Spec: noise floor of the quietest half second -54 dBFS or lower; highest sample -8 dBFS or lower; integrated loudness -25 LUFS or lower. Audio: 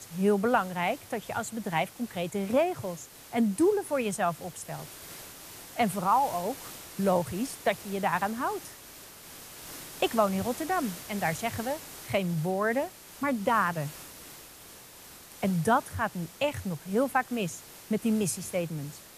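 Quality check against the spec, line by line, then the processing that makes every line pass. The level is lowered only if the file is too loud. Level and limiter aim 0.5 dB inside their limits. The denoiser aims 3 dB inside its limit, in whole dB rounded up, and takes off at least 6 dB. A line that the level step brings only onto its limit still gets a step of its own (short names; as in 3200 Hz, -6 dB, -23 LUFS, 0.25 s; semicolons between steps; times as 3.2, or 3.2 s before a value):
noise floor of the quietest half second -49 dBFS: fail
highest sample -12.0 dBFS: OK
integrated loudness -29.5 LUFS: OK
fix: denoiser 8 dB, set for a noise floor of -49 dBFS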